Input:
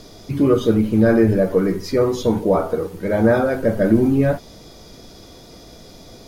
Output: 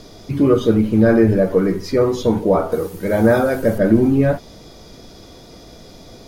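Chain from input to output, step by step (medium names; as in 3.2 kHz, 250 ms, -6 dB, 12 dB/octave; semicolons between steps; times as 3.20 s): treble shelf 6.5 kHz -4.5 dB, from 2.72 s +9.5 dB, from 3.78 s -4.5 dB; trim +1.5 dB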